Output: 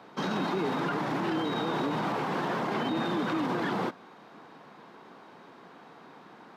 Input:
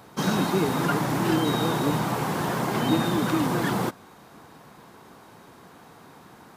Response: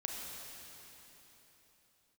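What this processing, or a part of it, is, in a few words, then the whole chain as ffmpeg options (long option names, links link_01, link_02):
DJ mixer with the lows and highs turned down: -filter_complex "[0:a]acrossover=split=160 4800:gain=0.0708 1 0.0891[link_01][link_02][link_03];[link_01][link_02][link_03]amix=inputs=3:normalize=0,alimiter=limit=-21dB:level=0:latency=1:release=25,volume=-1dB"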